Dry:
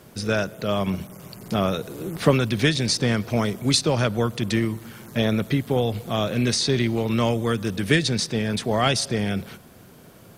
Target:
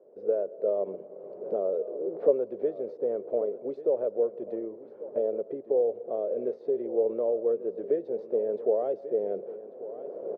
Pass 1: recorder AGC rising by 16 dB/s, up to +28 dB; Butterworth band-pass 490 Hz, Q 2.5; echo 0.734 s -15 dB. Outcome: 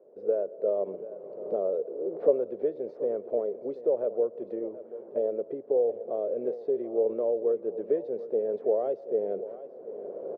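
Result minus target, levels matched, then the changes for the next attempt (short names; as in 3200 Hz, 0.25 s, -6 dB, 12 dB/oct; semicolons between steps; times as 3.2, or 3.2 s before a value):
echo 0.406 s early
change: echo 1.14 s -15 dB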